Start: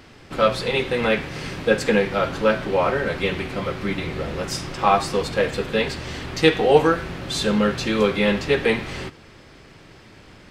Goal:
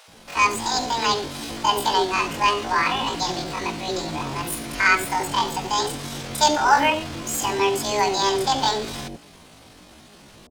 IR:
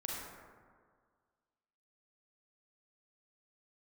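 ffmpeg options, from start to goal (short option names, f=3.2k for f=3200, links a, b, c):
-filter_complex "[0:a]asetrate=83250,aresample=44100,atempo=0.529732,acrossover=split=600[a][b];[a]adelay=80[c];[c][b]amix=inputs=2:normalize=0"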